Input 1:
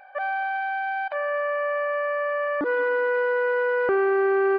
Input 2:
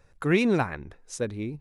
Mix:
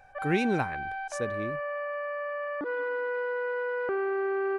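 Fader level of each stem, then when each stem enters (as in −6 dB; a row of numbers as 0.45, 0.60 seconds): −8.0, −4.5 decibels; 0.00, 0.00 seconds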